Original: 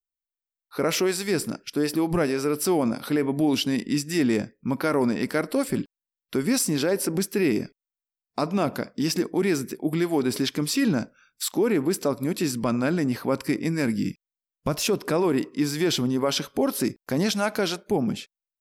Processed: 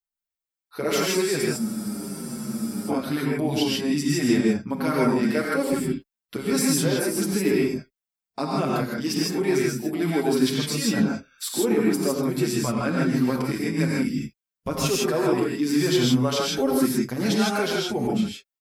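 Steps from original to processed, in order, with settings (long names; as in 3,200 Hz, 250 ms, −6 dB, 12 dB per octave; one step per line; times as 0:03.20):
reverb whose tail is shaped and stops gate 180 ms rising, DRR −3 dB
frozen spectrum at 0:01.60, 1.30 s
barber-pole flanger 6.6 ms −1.1 Hz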